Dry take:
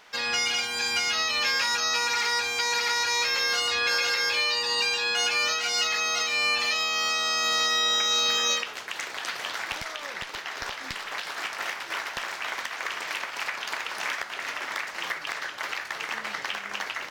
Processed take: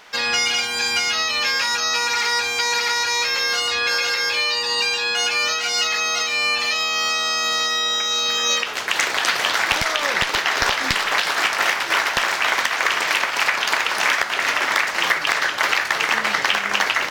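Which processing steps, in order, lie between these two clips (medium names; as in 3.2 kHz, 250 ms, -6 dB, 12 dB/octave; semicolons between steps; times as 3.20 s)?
gain riding; trim +7 dB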